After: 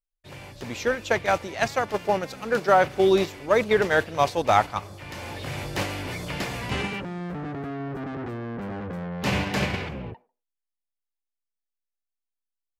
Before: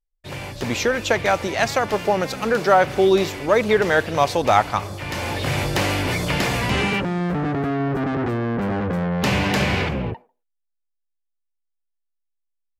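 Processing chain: gate -19 dBFS, range -7 dB; gain -3 dB

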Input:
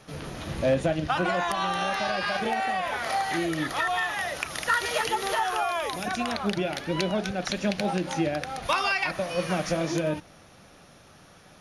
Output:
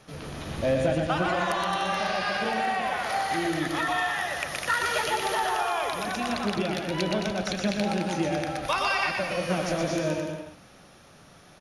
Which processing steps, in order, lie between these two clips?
bouncing-ball echo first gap 0.12 s, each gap 0.8×, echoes 5; gain -2 dB

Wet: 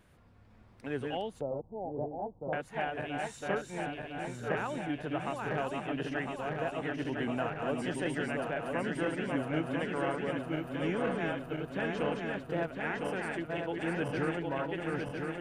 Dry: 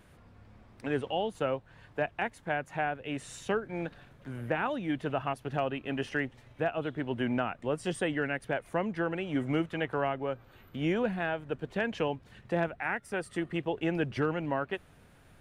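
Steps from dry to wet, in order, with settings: regenerating reverse delay 0.503 s, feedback 79%, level -3 dB; 1.41–2.53 steep low-pass 910 Hz 48 dB/oct; gain -5 dB

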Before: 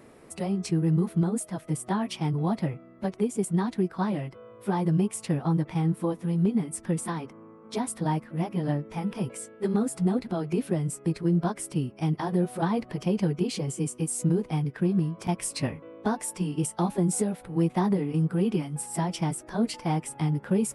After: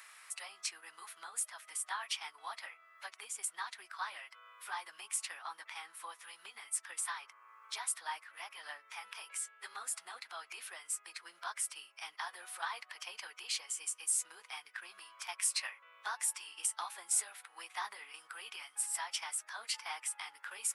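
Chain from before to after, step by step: HPF 1200 Hz 24 dB/oct; mismatched tape noise reduction encoder only

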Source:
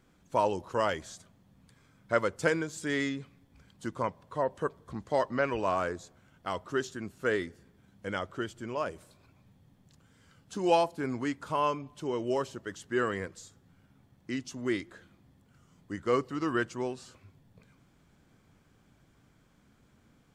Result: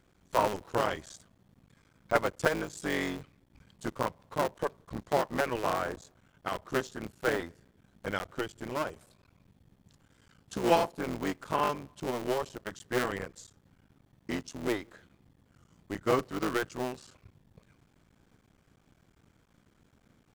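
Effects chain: cycle switcher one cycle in 3, muted; transient shaper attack +3 dB, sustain -1 dB

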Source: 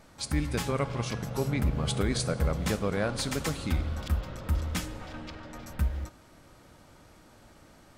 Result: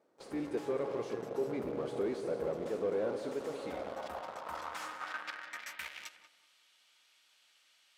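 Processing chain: gate -45 dBFS, range -7 dB; RIAA curve recording; in parallel at -3.5 dB: companded quantiser 2-bit; on the sum: tube stage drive 29 dB, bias 0.45; band-pass sweep 410 Hz -> 3000 Hz, 3.3–6.27; on a send: tape echo 0.185 s, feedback 36%, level -7.5 dB, low-pass 1300 Hz; on the sum: gain +5 dB

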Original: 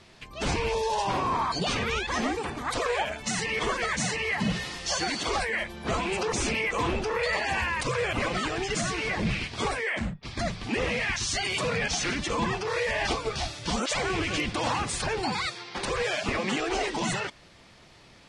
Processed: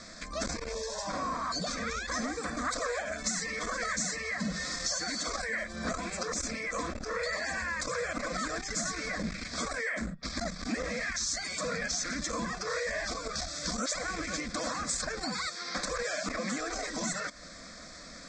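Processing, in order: Chebyshev low-pass 7800 Hz, order 5; high shelf 3100 Hz +10 dB; compressor 10:1, threshold -35 dBFS, peak gain reduction 15.5 dB; fixed phaser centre 580 Hz, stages 8; core saturation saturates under 300 Hz; gain +8.5 dB

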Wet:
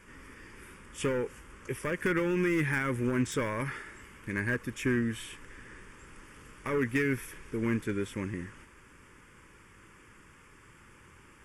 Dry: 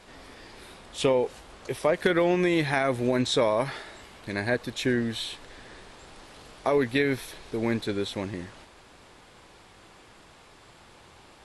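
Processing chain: hard clip -20 dBFS, distortion -13 dB; fixed phaser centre 1700 Hz, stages 4

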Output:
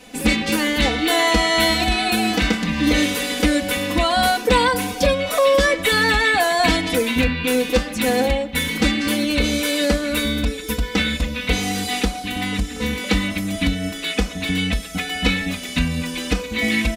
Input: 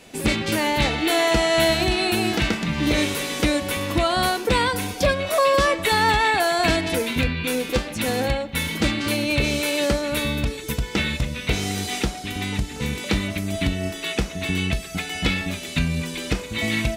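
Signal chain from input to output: comb 4 ms, depth 99%

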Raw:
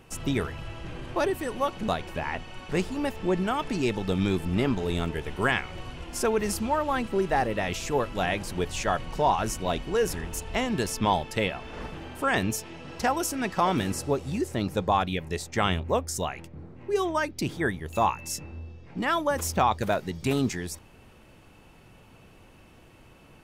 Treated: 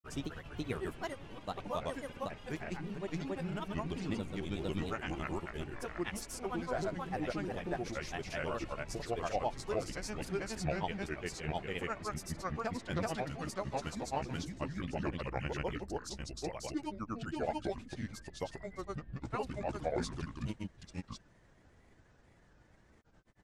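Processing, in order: gliding pitch shift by -8 st starting unshifted; grains, grains 29/s, spray 0.616 s, pitch spread up and down by 3 st; gain -6.5 dB

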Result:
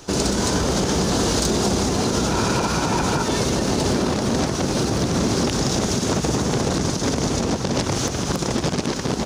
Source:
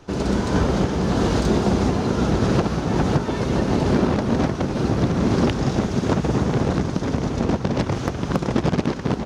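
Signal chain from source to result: 2.28–3.23 small resonant body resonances 970/1400/2400 Hz, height 10 dB, ringing for 20 ms; limiter -16 dBFS, peak gain reduction 10.5 dB; tone controls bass -3 dB, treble +15 dB; gain +4.5 dB

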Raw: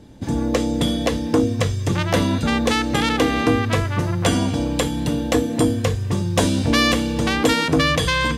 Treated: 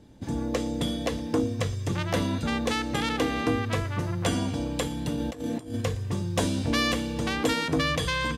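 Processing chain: 5.15–5.81 negative-ratio compressor -23 dBFS, ratio -0.5; echo 0.115 s -22.5 dB; gain -8 dB

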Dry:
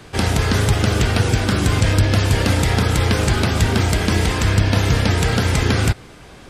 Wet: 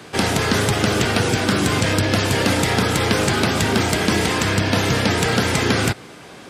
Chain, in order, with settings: HPF 160 Hz 12 dB/oct; in parallel at -7.5 dB: soft clip -18.5 dBFS, distortion -12 dB

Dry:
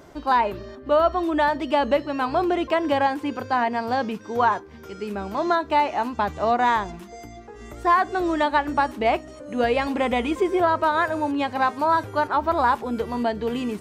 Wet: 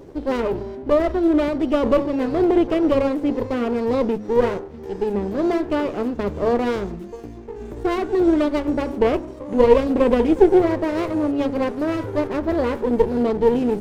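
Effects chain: resonant low shelf 620 Hz +8.5 dB, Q 3; de-hum 70.16 Hz, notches 19; running maximum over 17 samples; gain -3 dB

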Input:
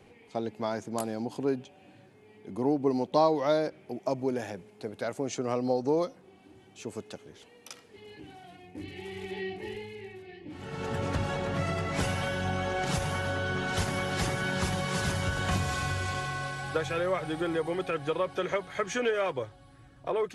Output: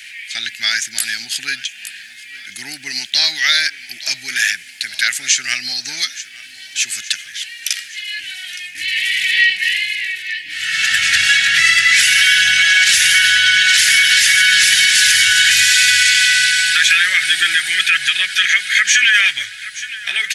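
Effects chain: elliptic high-pass 1700 Hz, stop band 40 dB; feedback echo 0.867 s, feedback 58%, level -20.5 dB; maximiser +32 dB; gain -1 dB

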